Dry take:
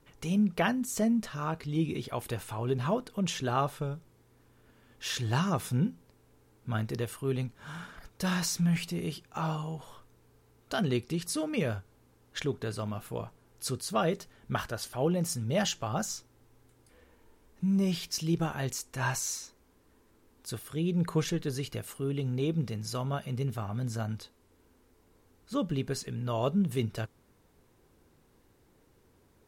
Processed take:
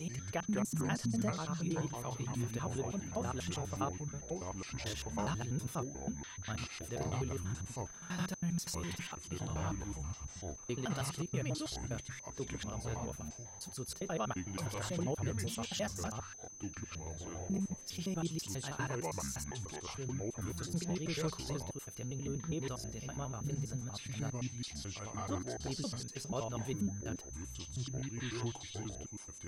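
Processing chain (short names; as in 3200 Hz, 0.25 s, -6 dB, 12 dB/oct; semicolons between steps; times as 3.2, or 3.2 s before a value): slices in reverse order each 81 ms, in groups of 4; echoes that change speed 86 ms, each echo -5 st, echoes 2; whine 6200 Hz -41 dBFS; gain -9 dB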